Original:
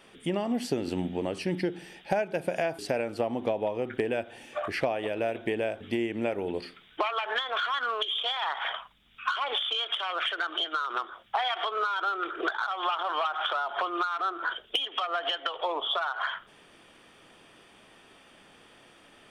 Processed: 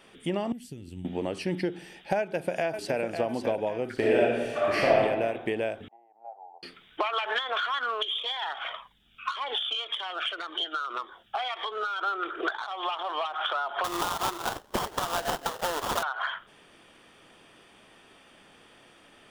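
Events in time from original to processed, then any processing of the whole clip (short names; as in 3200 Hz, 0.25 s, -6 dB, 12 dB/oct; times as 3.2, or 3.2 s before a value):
0.52–1.05 EQ curve 100 Hz 0 dB, 360 Hz -17 dB, 670 Hz -27 dB, 1200 Hz -24 dB, 3200 Hz -12 dB, 4600 Hz -16 dB, 8500 Hz -6 dB
2.18–3 echo throw 0.55 s, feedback 45%, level -7.5 dB
3.94–4.95 reverb throw, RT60 1.3 s, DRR -5.5 dB
5.88–6.63 Butterworth band-pass 790 Hz, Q 5.4
7.13–7.62 three-band squash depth 100%
8.18–12.01 cascading phaser falling 1.8 Hz
12.55–13.34 bell 1400 Hz -10.5 dB 0.36 oct
13.84–16.03 sample-rate reducer 2300 Hz, jitter 20%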